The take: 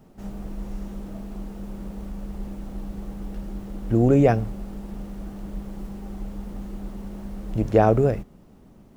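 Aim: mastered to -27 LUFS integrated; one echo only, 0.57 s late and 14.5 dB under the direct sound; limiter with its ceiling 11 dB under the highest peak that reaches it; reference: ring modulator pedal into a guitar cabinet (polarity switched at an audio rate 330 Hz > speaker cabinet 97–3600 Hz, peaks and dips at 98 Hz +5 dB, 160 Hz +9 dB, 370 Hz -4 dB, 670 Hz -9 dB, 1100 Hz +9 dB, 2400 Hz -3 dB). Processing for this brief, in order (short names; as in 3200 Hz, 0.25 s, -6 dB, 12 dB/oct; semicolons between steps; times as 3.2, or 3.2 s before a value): limiter -16 dBFS; echo 0.57 s -14.5 dB; polarity switched at an audio rate 330 Hz; speaker cabinet 97–3600 Hz, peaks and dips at 98 Hz +5 dB, 160 Hz +9 dB, 370 Hz -4 dB, 670 Hz -9 dB, 1100 Hz +9 dB, 2400 Hz -3 dB; gain +3 dB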